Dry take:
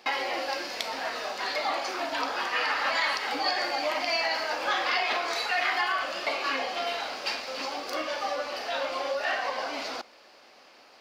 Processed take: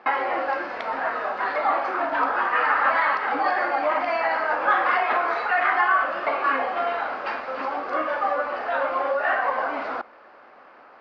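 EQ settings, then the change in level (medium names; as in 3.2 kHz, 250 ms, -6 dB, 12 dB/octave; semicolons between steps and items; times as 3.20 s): resonant low-pass 1.4 kHz, resonance Q 1.9; +4.5 dB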